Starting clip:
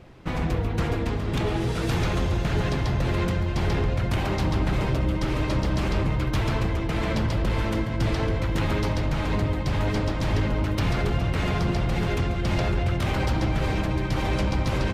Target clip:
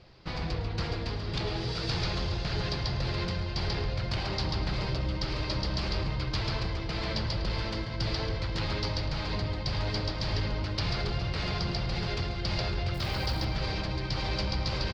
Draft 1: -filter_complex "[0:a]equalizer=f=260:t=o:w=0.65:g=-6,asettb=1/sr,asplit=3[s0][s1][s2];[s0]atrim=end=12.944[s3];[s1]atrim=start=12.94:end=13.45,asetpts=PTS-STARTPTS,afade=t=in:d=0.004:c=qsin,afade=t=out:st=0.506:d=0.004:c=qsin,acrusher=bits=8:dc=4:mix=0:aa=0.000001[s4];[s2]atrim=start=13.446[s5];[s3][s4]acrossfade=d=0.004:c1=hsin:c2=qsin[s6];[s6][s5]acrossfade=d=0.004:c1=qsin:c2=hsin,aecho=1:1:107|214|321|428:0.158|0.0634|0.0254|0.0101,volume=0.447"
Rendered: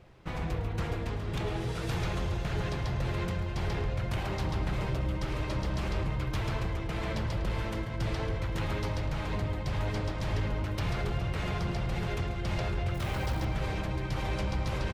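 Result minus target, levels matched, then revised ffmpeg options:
4 kHz band -8.0 dB
-filter_complex "[0:a]lowpass=f=4700:t=q:w=6.8,equalizer=f=260:t=o:w=0.65:g=-6,asettb=1/sr,asplit=3[s0][s1][s2];[s0]atrim=end=12.944[s3];[s1]atrim=start=12.94:end=13.45,asetpts=PTS-STARTPTS,afade=t=in:d=0.004:c=qsin,afade=t=out:st=0.506:d=0.004:c=qsin,acrusher=bits=8:dc=4:mix=0:aa=0.000001[s4];[s2]atrim=start=13.446[s5];[s3][s4]acrossfade=d=0.004:c1=hsin:c2=qsin[s6];[s6][s5]acrossfade=d=0.004:c1=qsin:c2=hsin,aecho=1:1:107|214|321|428:0.158|0.0634|0.0254|0.0101,volume=0.447"

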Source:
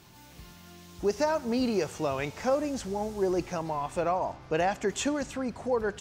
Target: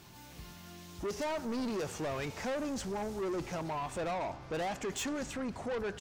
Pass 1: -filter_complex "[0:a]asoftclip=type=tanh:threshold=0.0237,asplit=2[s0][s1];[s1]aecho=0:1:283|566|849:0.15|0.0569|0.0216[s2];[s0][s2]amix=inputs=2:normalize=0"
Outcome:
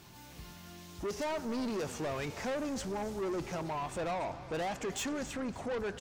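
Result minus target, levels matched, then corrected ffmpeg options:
echo-to-direct +10.5 dB
-filter_complex "[0:a]asoftclip=type=tanh:threshold=0.0237,asplit=2[s0][s1];[s1]aecho=0:1:283|566:0.0447|0.017[s2];[s0][s2]amix=inputs=2:normalize=0"

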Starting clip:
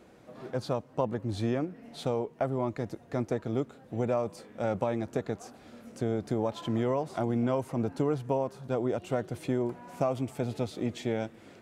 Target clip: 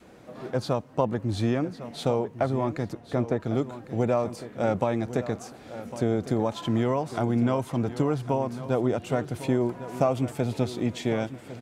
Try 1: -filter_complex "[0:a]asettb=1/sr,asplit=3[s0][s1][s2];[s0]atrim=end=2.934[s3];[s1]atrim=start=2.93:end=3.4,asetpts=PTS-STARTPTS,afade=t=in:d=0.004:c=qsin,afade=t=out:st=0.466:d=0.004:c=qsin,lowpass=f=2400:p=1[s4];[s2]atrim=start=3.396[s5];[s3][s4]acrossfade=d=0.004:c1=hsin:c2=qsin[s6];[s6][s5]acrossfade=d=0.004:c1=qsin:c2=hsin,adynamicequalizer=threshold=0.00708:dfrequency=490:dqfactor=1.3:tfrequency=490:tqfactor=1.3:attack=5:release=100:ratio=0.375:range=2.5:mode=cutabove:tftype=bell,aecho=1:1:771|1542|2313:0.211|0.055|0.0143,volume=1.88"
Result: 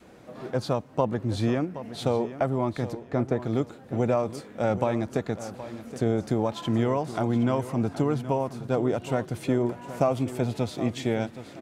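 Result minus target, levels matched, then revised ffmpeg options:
echo 333 ms early
-filter_complex "[0:a]asettb=1/sr,asplit=3[s0][s1][s2];[s0]atrim=end=2.934[s3];[s1]atrim=start=2.93:end=3.4,asetpts=PTS-STARTPTS,afade=t=in:d=0.004:c=qsin,afade=t=out:st=0.466:d=0.004:c=qsin,lowpass=f=2400:p=1[s4];[s2]atrim=start=3.396[s5];[s3][s4]acrossfade=d=0.004:c1=hsin:c2=qsin[s6];[s6][s5]acrossfade=d=0.004:c1=qsin:c2=hsin,adynamicequalizer=threshold=0.00708:dfrequency=490:dqfactor=1.3:tfrequency=490:tqfactor=1.3:attack=5:release=100:ratio=0.375:range=2.5:mode=cutabove:tftype=bell,aecho=1:1:1104|2208|3312:0.211|0.055|0.0143,volume=1.88"

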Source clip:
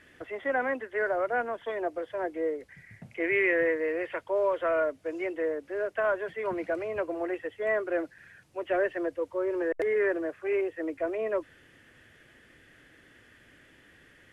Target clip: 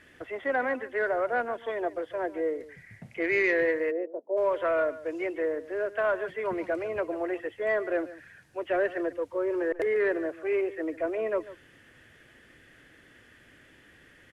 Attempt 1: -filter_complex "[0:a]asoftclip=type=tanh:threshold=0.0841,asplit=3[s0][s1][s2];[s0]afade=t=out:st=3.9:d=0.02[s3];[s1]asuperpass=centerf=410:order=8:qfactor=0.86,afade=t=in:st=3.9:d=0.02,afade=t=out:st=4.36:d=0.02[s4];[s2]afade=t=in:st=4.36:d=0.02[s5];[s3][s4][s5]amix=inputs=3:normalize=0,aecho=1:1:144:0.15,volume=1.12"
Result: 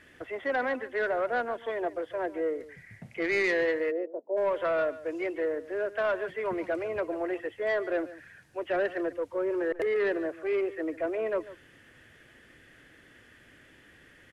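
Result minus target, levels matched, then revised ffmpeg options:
saturation: distortion +11 dB
-filter_complex "[0:a]asoftclip=type=tanh:threshold=0.188,asplit=3[s0][s1][s2];[s0]afade=t=out:st=3.9:d=0.02[s3];[s1]asuperpass=centerf=410:order=8:qfactor=0.86,afade=t=in:st=3.9:d=0.02,afade=t=out:st=4.36:d=0.02[s4];[s2]afade=t=in:st=4.36:d=0.02[s5];[s3][s4][s5]amix=inputs=3:normalize=0,aecho=1:1:144:0.15,volume=1.12"

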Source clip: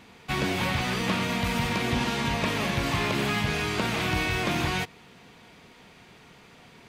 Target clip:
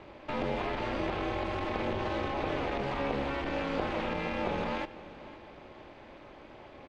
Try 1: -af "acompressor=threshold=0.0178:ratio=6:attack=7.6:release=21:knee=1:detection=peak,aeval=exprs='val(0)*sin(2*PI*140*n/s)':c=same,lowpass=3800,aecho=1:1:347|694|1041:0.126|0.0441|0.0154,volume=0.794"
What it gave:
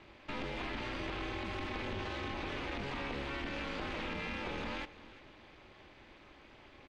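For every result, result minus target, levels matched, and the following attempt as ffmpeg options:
echo 172 ms early; 500 Hz band -3.5 dB
-af "acompressor=threshold=0.0178:ratio=6:attack=7.6:release=21:knee=1:detection=peak,aeval=exprs='val(0)*sin(2*PI*140*n/s)':c=same,lowpass=3800,aecho=1:1:519|1038|1557:0.126|0.0441|0.0154,volume=0.794"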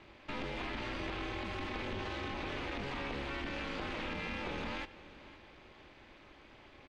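500 Hz band -3.5 dB
-af "acompressor=threshold=0.0178:ratio=6:attack=7.6:release=21:knee=1:detection=peak,equalizer=f=520:w=0.61:g=12.5,aeval=exprs='val(0)*sin(2*PI*140*n/s)':c=same,lowpass=3800,aecho=1:1:519|1038|1557:0.126|0.0441|0.0154,volume=0.794"

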